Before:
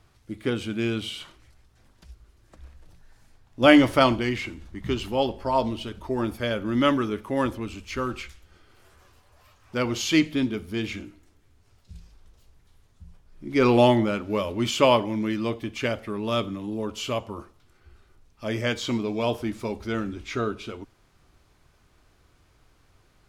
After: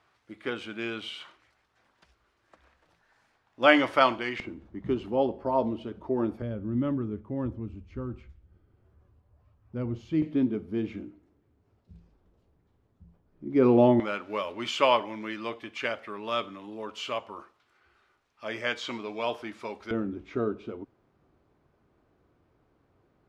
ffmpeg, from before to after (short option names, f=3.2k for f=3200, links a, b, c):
-af "asetnsamples=n=441:p=0,asendcmd='4.4 bandpass f 370;6.42 bandpass f 100;10.22 bandpass f 300;14 bandpass f 1500;19.91 bandpass f 340',bandpass=f=1.3k:t=q:w=0.64:csg=0"